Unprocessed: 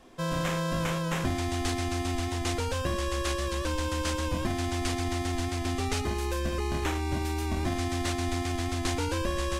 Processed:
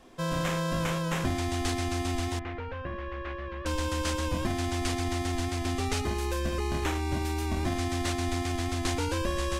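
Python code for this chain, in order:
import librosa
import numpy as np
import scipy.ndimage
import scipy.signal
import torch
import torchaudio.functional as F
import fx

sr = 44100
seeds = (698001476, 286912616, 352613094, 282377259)

y = fx.ladder_lowpass(x, sr, hz=2600.0, resonance_pct=30, at=(2.39, 3.66))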